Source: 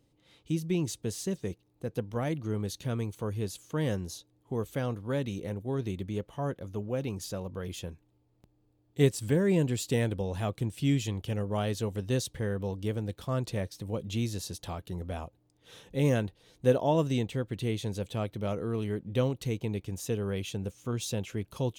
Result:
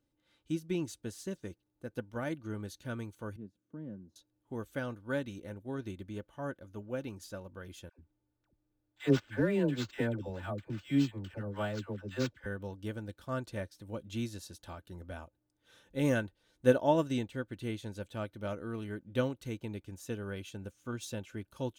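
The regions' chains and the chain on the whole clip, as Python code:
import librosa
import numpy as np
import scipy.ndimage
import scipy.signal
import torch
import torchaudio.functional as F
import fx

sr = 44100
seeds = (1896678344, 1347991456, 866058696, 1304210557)

y = fx.chain(x, sr, fx.bandpass_q(hz=210.0, q=1.8),
    fx.band_squash(depth_pct=40), at=(3.36, 4.16))
y = fx.chain(y, sr, fx.dispersion(late='lows', ms=94.0, hz=750.0),
    fx.resample_linear(factor=4), at=(7.89, 12.46))
y = fx.peak_eq(y, sr, hz=1500.0, db=9.5, octaves=0.34)
y = y + 0.38 * np.pad(y, (int(3.4 * sr / 1000.0), 0))[:len(y)]
y = fx.upward_expand(y, sr, threshold_db=-42.0, expansion=1.5)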